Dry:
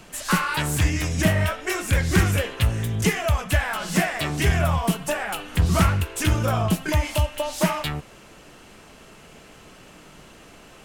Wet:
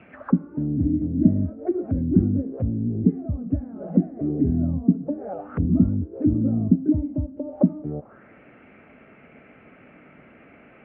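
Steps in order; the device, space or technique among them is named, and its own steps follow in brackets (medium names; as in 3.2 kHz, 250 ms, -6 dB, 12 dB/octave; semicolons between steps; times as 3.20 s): envelope filter bass rig (touch-sensitive low-pass 270–2700 Hz down, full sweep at -21 dBFS; cabinet simulation 80–2000 Hz, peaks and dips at 250 Hz +8 dB, 590 Hz +3 dB, 1 kHz -9 dB, 1.8 kHz -5 dB); trim -3.5 dB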